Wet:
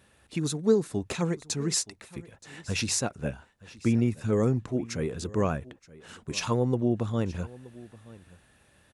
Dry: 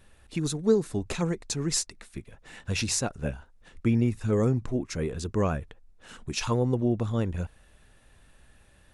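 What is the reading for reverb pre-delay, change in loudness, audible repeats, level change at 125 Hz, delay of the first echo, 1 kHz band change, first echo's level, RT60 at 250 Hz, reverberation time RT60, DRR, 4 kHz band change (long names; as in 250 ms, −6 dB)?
no reverb audible, −0.5 dB, 1, −1.5 dB, 924 ms, 0.0 dB, −20.5 dB, no reverb audible, no reverb audible, no reverb audible, 0.0 dB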